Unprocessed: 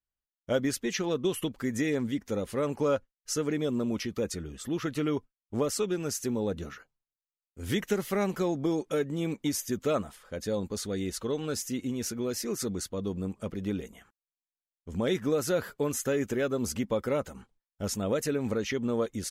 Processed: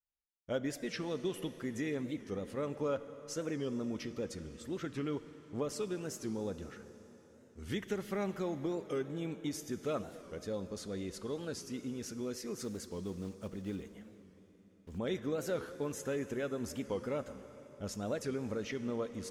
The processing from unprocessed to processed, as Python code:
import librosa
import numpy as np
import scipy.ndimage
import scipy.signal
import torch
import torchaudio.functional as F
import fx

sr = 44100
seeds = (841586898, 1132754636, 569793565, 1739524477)

y = fx.block_float(x, sr, bits=5, at=(12.57, 15.0))
y = fx.high_shelf(y, sr, hz=9100.0, db=-10.0)
y = fx.rev_plate(y, sr, seeds[0], rt60_s=4.3, hf_ratio=0.9, predelay_ms=0, drr_db=11.0)
y = fx.record_warp(y, sr, rpm=45.0, depth_cents=160.0)
y = F.gain(torch.from_numpy(y), -8.0).numpy()